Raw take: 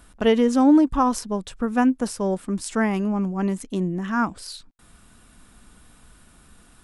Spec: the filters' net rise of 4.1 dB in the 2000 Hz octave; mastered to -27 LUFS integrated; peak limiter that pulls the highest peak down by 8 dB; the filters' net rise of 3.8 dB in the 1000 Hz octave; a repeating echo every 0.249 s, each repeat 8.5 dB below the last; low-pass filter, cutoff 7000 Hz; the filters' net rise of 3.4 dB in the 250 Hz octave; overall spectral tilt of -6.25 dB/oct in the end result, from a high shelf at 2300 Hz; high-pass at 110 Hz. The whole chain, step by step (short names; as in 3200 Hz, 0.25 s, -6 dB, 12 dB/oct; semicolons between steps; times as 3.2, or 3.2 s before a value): HPF 110 Hz; LPF 7000 Hz; bell 250 Hz +4 dB; bell 1000 Hz +4 dB; bell 2000 Hz +5.5 dB; high shelf 2300 Hz -4 dB; limiter -12 dBFS; feedback echo 0.249 s, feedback 38%, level -8.5 dB; gain -5.5 dB